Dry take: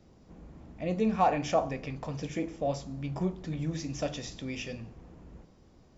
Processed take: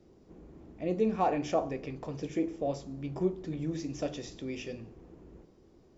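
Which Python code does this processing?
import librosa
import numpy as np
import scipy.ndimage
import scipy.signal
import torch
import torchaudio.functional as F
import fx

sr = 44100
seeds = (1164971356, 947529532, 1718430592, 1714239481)

y = fx.peak_eq(x, sr, hz=370.0, db=11.0, octaves=0.75)
y = y * 10.0 ** (-5.0 / 20.0)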